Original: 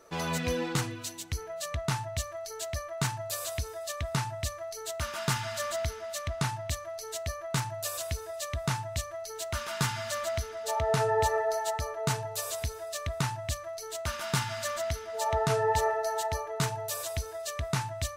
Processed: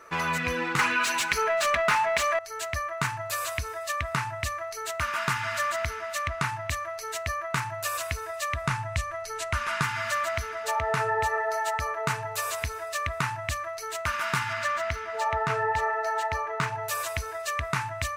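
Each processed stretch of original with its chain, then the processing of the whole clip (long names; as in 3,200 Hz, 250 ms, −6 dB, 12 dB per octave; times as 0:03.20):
0:00.79–0:02.39: comb filter 4.8 ms, depth 86% + mid-hump overdrive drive 26 dB, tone 4,300 Hz, clips at −12.5 dBFS
0:08.62–0:09.83: Butterworth low-pass 12,000 Hz 48 dB per octave + low-shelf EQ 120 Hz +10 dB
0:14.53–0:16.83: running median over 3 samples + high-shelf EQ 8,000 Hz −9 dB
whole clip: flat-topped bell 1,600 Hz +10.5 dB; downward compressor 2.5 to 1, threshold −27 dBFS; level +1.5 dB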